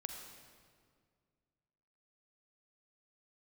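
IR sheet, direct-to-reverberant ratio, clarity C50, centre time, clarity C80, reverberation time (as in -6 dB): 4.0 dB, 4.5 dB, 49 ms, 5.5 dB, 2.0 s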